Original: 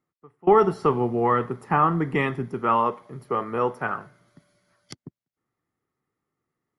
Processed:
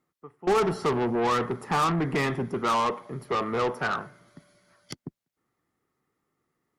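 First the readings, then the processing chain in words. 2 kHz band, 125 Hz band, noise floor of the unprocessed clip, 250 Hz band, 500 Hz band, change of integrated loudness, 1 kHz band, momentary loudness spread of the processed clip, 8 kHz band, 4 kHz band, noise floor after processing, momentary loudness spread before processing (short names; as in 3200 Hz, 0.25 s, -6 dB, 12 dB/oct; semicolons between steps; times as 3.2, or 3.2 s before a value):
0.0 dB, -3.0 dB, under -85 dBFS, -2.5 dB, -4.0 dB, -3.5 dB, -4.0 dB, 17 LU, n/a, +8.5 dB, under -85 dBFS, 11 LU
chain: bell 110 Hz -4 dB 0.82 oct; soft clip -18.5 dBFS, distortion -10 dB; added harmonics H 5 -17 dB, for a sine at -18.5 dBFS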